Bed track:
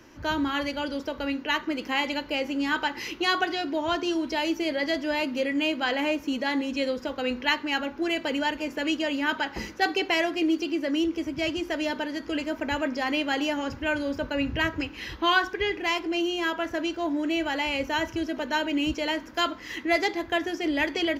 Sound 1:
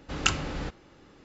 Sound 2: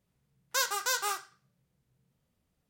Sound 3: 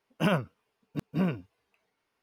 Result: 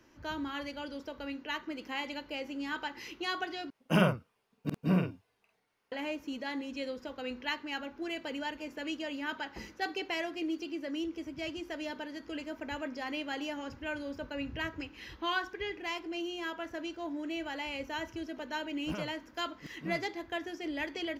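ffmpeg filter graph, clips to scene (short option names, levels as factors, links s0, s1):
-filter_complex "[3:a]asplit=2[s0][s1];[0:a]volume=0.299[s2];[s0]asplit=2[s3][s4];[s4]adelay=49,volume=0.562[s5];[s3][s5]amix=inputs=2:normalize=0[s6];[s2]asplit=2[s7][s8];[s7]atrim=end=3.704[s9];[s6]atrim=end=2.22,asetpts=PTS-STARTPTS,volume=0.891[s10];[s8]atrim=start=5.916[s11];[s1]atrim=end=2.22,asetpts=PTS-STARTPTS,volume=0.188,afade=t=in:d=0.004:c=hsin,afade=t=out:st=2.216:d=0.004:c=hsin,adelay=18670[s12];[s9][s10]acrossfade=d=0.004:c1=hsin:c2=hsin[s13];[s13][s11]acrossfade=d=0.004:c1=hsin:c2=hsin[s14];[s14][s12]amix=inputs=2:normalize=0"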